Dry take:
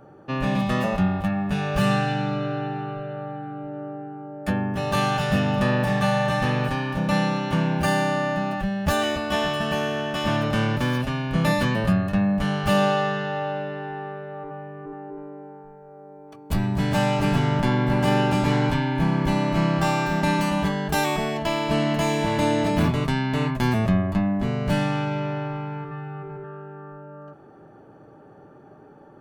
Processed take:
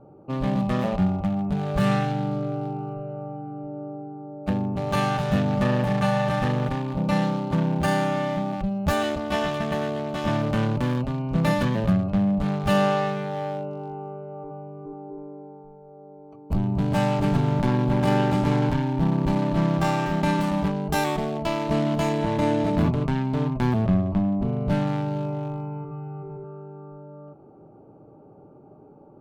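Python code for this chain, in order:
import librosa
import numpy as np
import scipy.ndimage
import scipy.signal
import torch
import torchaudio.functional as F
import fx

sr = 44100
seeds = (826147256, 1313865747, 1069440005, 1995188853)

y = fx.wiener(x, sr, points=25)
y = fx.high_shelf(y, sr, hz=5500.0, db=-5.5, at=(22.09, 24.87))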